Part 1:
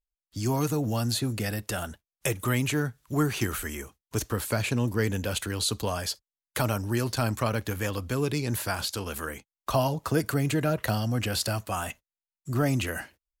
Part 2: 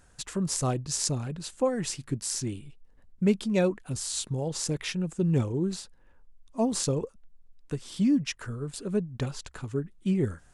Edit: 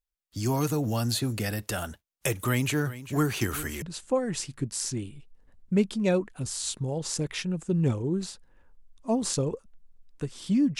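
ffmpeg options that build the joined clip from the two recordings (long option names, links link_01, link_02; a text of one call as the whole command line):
ffmpeg -i cue0.wav -i cue1.wav -filter_complex "[0:a]asplit=3[link_01][link_02][link_03];[link_01]afade=type=out:start_time=2.85:duration=0.02[link_04];[link_02]aecho=1:1:396:0.178,afade=type=in:start_time=2.85:duration=0.02,afade=type=out:start_time=3.82:duration=0.02[link_05];[link_03]afade=type=in:start_time=3.82:duration=0.02[link_06];[link_04][link_05][link_06]amix=inputs=3:normalize=0,apad=whole_dur=10.79,atrim=end=10.79,atrim=end=3.822[link_07];[1:a]atrim=start=1.318:end=8.29[link_08];[link_07][link_08]acrossfade=duration=0.004:curve1=hsin:curve2=hsin" out.wav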